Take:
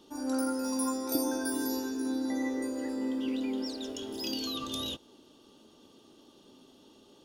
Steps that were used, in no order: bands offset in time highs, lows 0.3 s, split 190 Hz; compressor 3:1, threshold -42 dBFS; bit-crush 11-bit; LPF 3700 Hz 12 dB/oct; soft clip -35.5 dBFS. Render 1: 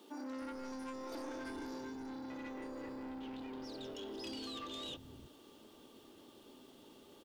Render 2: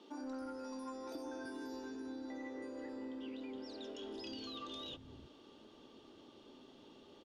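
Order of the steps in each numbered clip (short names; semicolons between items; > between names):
LPF > bit-crush > soft clip > compressor > bands offset in time; compressor > bit-crush > bands offset in time > soft clip > LPF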